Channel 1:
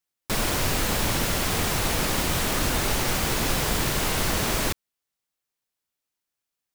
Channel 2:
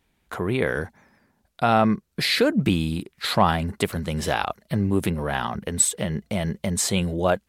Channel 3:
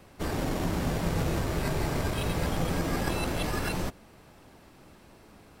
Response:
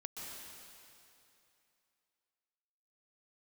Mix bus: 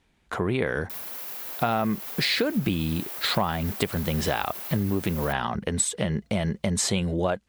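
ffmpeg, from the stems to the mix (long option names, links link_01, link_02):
-filter_complex "[0:a]aexciter=amount=3.6:drive=7.6:freq=11000,adelay=600,volume=-15dB[link_01];[1:a]lowpass=8400,volume=2dB[link_02];[2:a]aeval=exprs='sgn(val(0))*max(abs(val(0))-0.00355,0)':channel_layout=same,adelay=1250,volume=-13dB[link_03];[link_01][link_03]amix=inputs=2:normalize=0,highpass=500,alimiter=level_in=2.5dB:limit=-24dB:level=0:latency=1:release=38,volume=-2.5dB,volume=0dB[link_04];[link_02][link_04]amix=inputs=2:normalize=0,acompressor=threshold=-21dB:ratio=6"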